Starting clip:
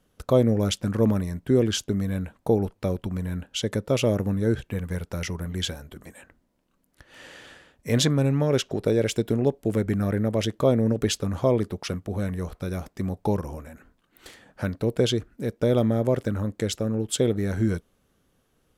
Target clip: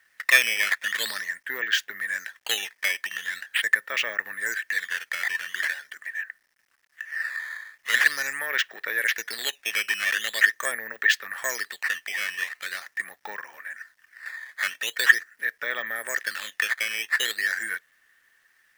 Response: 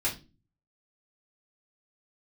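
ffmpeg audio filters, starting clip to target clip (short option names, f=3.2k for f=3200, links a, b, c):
-af "lowpass=f=2.4k:p=1,acrusher=samples=9:mix=1:aa=0.000001:lfo=1:lforange=14.4:lforate=0.43,acontrast=72,highpass=f=1.8k:t=q:w=14,acrusher=bits=10:mix=0:aa=0.000001,volume=-1.5dB"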